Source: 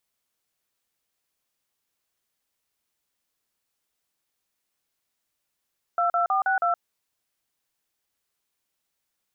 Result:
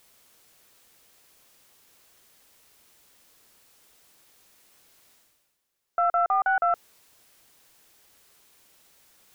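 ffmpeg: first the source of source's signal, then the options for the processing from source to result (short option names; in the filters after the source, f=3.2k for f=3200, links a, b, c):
-f lavfi -i "aevalsrc='0.075*clip(min(mod(t,0.16),0.12-mod(t,0.16))/0.002,0,1)*(eq(floor(t/0.16),0)*(sin(2*PI*697*mod(t,0.16))+sin(2*PI*1336*mod(t,0.16)))+eq(floor(t/0.16),1)*(sin(2*PI*697*mod(t,0.16))+sin(2*PI*1336*mod(t,0.16)))+eq(floor(t/0.16),2)*(sin(2*PI*770*mod(t,0.16))+sin(2*PI*1209*mod(t,0.16)))+eq(floor(t/0.16),3)*(sin(2*PI*770*mod(t,0.16))+sin(2*PI*1477*mod(t,0.16)))+eq(floor(t/0.16),4)*(sin(2*PI*697*mod(t,0.16))+sin(2*PI*1336*mod(t,0.16))))':d=0.8:s=44100"
-af "equalizer=f=450:w=1.5:g=2.5,areverse,acompressor=mode=upward:threshold=-42dB:ratio=2.5,areverse,aeval=exprs='0.168*(cos(1*acos(clip(val(0)/0.168,-1,1)))-cos(1*PI/2))+0.00596*(cos(2*acos(clip(val(0)/0.168,-1,1)))-cos(2*PI/2))':c=same"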